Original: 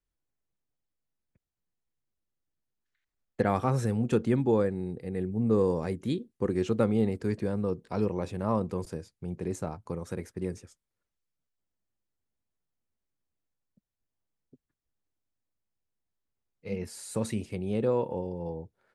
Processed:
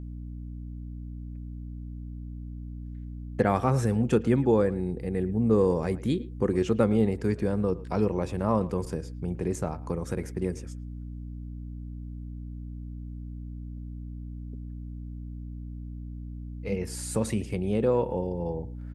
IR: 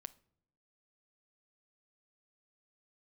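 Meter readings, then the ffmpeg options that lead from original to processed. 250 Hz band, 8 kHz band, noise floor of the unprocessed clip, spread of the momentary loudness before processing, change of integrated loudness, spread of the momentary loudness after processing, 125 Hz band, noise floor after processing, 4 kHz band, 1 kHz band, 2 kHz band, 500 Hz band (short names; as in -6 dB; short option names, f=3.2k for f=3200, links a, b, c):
+3.0 dB, +4.5 dB, under -85 dBFS, 12 LU, +3.0 dB, 16 LU, +4.0 dB, -39 dBFS, +2.5 dB, +3.0 dB, +3.0 dB, +3.0 dB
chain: -filter_complex "[0:a]equalizer=f=4k:w=7.7:g=-5.5,aeval=exprs='val(0)+0.00708*(sin(2*PI*60*n/s)+sin(2*PI*2*60*n/s)/2+sin(2*PI*3*60*n/s)/3+sin(2*PI*4*60*n/s)/4+sin(2*PI*5*60*n/s)/5)':c=same,asplit=2[a][b];[b]acompressor=threshold=-38dB:ratio=6,volume=-2dB[c];[a][c]amix=inputs=2:normalize=0,asplit=2[d][e];[e]adelay=110,highpass=300,lowpass=3.4k,asoftclip=type=hard:threshold=-18.5dB,volume=-18dB[f];[d][f]amix=inputs=2:normalize=0,volume=1.5dB"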